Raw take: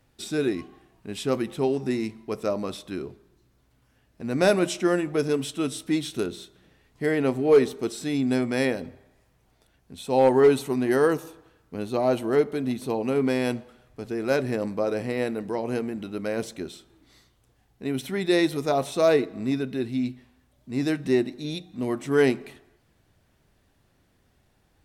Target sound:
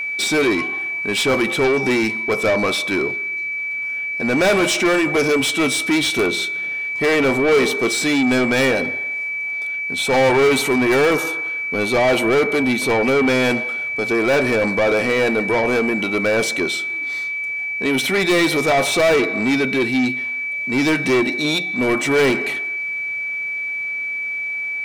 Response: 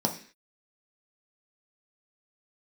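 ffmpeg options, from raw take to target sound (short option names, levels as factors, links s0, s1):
-filter_complex "[0:a]asplit=2[s0][s1];[s1]highpass=f=720:p=1,volume=22.4,asoftclip=type=tanh:threshold=0.335[s2];[s0][s2]amix=inputs=2:normalize=0,lowpass=f=5900:p=1,volume=0.501,aeval=exprs='val(0)+0.0794*sin(2*PI*2300*n/s)':c=same"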